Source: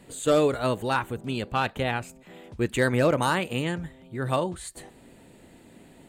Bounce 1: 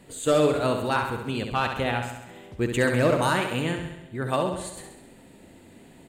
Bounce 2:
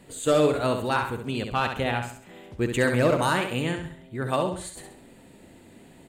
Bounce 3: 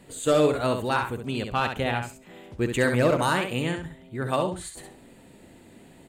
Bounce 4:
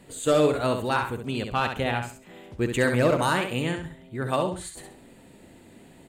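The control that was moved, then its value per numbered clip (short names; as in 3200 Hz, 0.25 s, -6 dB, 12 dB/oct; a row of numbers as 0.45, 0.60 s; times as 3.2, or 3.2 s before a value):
feedback echo, feedback: 60, 39, 17, 27%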